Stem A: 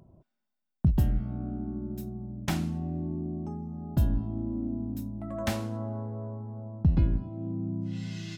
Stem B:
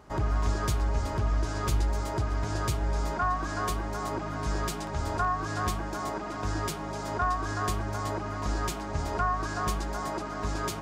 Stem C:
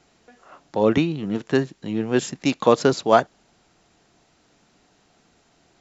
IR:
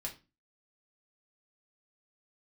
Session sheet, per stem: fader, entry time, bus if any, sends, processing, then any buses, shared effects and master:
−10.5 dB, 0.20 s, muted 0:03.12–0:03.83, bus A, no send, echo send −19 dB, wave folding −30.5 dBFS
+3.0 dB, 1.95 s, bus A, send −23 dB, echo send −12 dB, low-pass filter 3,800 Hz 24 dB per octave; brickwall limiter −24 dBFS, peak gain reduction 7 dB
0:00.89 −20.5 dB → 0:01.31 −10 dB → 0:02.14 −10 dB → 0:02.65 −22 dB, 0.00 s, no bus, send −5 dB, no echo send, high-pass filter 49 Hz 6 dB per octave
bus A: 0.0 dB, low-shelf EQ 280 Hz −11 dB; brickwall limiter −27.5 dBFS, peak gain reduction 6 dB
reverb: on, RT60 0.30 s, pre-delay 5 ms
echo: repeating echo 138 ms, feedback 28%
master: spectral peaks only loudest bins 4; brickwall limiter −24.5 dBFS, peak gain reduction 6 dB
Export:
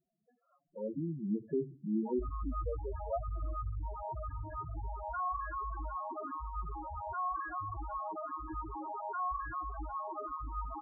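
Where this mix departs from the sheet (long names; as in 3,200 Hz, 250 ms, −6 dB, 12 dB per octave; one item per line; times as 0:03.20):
stem A −10.5 dB → −20.0 dB
stem B: send off
stem C: missing high-pass filter 49 Hz 6 dB per octave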